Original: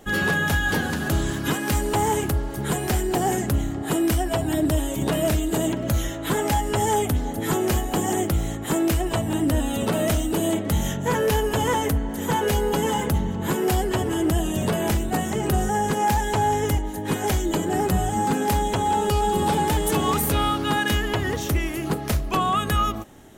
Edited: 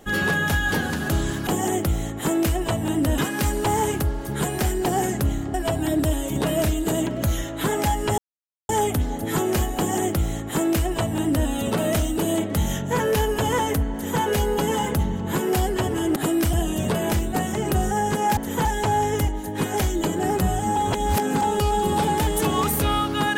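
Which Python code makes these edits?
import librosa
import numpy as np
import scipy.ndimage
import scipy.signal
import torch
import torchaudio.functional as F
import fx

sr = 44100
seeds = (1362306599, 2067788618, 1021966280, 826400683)

y = fx.edit(x, sr, fx.move(start_s=3.83, length_s=0.37, to_s=14.31),
    fx.insert_silence(at_s=6.84, length_s=0.51),
    fx.duplicate(start_s=7.92, length_s=1.71, to_s=1.47),
    fx.duplicate(start_s=12.08, length_s=0.28, to_s=16.15),
    fx.reverse_span(start_s=18.26, length_s=0.66), tone=tone)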